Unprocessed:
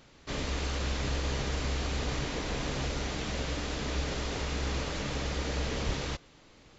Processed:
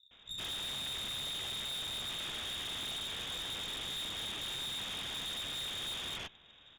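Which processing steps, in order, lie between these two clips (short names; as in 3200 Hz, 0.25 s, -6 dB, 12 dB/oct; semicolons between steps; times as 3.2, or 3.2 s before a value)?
one-sided fold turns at -28 dBFS; bands offset in time lows, highs 0.11 s, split 160 Hz; inverted band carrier 3700 Hz; low shelf 240 Hz +5.5 dB; tube stage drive 37 dB, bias 0.55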